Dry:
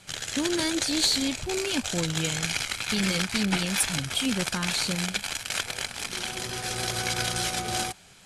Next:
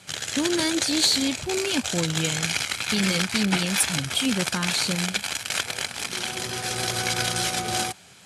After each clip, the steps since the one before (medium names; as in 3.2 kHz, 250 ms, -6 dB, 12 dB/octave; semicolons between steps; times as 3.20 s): high-pass 85 Hz; trim +3 dB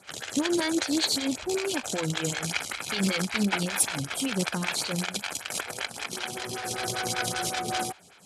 lamp-driven phase shifter 5.2 Hz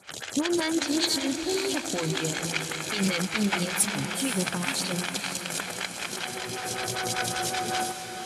echo that smears into a reverb 514 ms, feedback 49%, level -8 dB